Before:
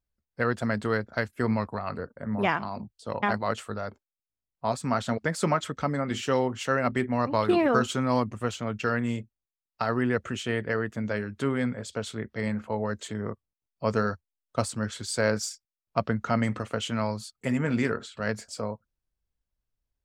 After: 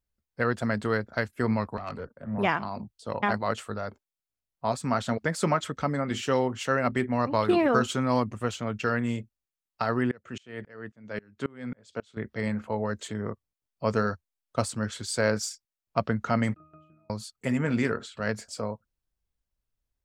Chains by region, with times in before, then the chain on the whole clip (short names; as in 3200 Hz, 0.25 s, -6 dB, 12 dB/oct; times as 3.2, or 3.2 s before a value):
1.77–2.38 tube stage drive 26 dB, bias 0.3 + three-band expander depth 70%
10.11–12.17 BPF 110–7600 Hz + dB-ramp tremolo swelling 3.7 Hz, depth 29 dB
16.54–17.1 compressor 12:1, threshold -35 dBFS + transient shaper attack +11 dB, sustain 0 dB + octave resonator D#, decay 0.65 s
whole clip: dry